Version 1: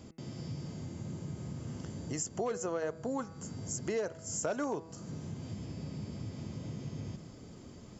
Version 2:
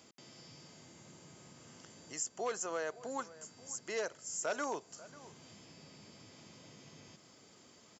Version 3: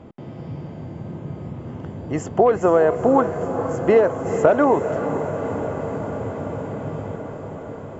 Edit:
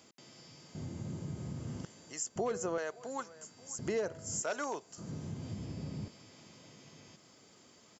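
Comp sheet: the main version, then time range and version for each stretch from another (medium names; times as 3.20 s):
2
0.75–1.85 s: from 1
2.36–2.78 s: from 1
3.79–4.42 s: from 1
4.98–6.08 s: from 1
not used: 3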